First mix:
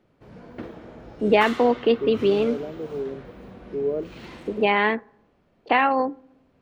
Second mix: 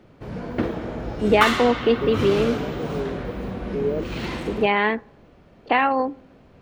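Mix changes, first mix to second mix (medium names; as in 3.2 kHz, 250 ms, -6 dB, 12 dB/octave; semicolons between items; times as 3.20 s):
background +11.5 dB; master: add bass shelf 110 Hz +5 dB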